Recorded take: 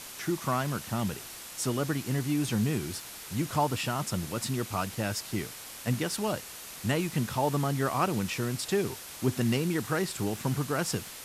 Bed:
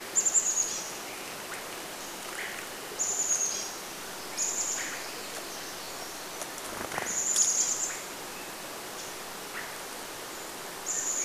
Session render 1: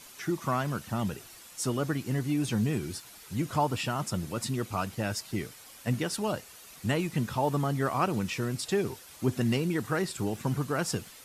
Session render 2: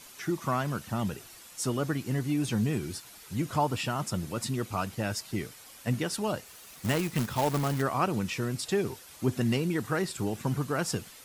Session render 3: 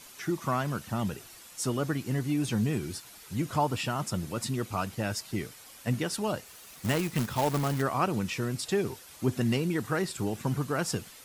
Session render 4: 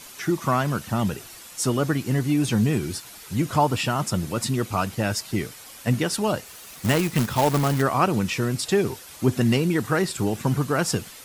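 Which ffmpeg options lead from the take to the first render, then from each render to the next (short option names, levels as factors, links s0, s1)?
-af "afftdn=nr=9:nf=-44"
-filter_complex "[0:a]asplit=3[s0][s1][s2];[s0]afade=t=out:st=6.45:d=0.02[s3];[s1]acrusher=bits=2:mode=log:mix=0:aa=0.000001,afade=t=in:st=6.45:d=0.02,afade=t=out:st=7.81:d=0.02[s4];[s2]afade=t=in:st=7.81:d=0.02[s5];[s3][s4][s5]amix=inputs=3:normalize=0"
-af anull
-af "volume=2.24"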